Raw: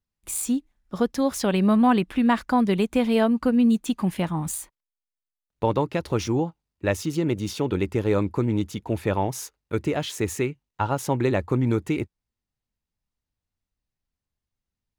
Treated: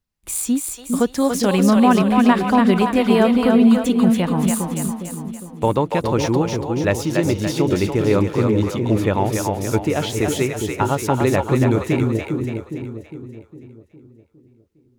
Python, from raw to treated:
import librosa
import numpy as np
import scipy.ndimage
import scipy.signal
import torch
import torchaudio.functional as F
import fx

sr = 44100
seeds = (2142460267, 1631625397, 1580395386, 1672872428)

y = fx.echo_split(x, sr, split_hz=490.0, low_ms=408, high_ms=285, feedback_pct=52, wet_db=-3.5)
y = y * 10.0 ** (4.5 / 20.0)